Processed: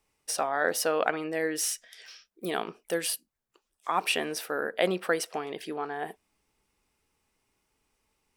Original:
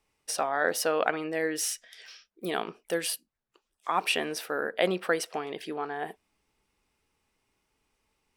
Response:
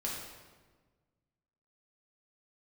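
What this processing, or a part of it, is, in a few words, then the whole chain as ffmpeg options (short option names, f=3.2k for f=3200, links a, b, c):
exciter from parts: -filter_complex "[0:a]asplit=2[a][b];[b]highpass=4.8k,asoftclip=type=tanh:threshold=-35.5dB,volume=-6dB[c];[a][c]amix=inputs=2:normalize=0"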